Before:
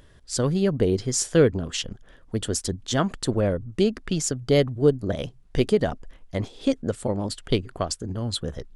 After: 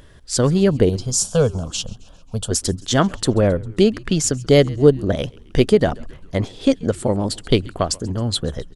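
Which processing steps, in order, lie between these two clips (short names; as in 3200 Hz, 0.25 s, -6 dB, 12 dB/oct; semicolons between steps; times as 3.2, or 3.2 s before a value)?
0.89–2.51 fixed phaser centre 800 Hz, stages 4; frequency-shifting echo 0.134 s, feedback 58%, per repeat -95 Hz, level -23.5 dB; gain +6.5 dB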